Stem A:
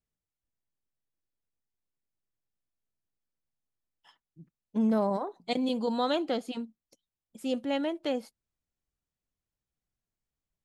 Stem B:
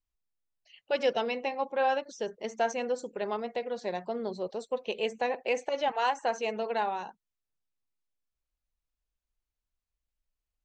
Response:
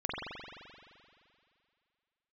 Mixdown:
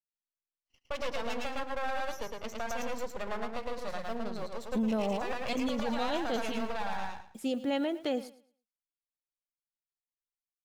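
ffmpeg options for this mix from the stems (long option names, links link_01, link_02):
-filter_complex "[0:a]bandreject=frequency=990:width=12,acrusher=bits=10:mix=0:aa=0.000001,volume=1.5dB,asplit=2[link_01][link_02];[link_02]volume=-19dB[link_03];[1:a]agate=range=-33dB:threshold=-45dB:ratio=3:detection=peak,equalizer=frequency=370:width_type=o:width=0.6:gain=-8.5,aeval=exprs='max(val(0),0)':channel_layout=same,volume=2.5dB,asplit=2[link_04][link_05];[link_05]volume=-3dB[link_06];[link_03][link_06]amix=inputs=2:normalize=0,aecho=0:1:110|220|330|440:1|0.24|0.0576|0.0138[link_07];[link_01][link_04][link_07]amix=inputs=3:normalize=0,alimiter=limit=-23dB:level=0:latency=1:release=58"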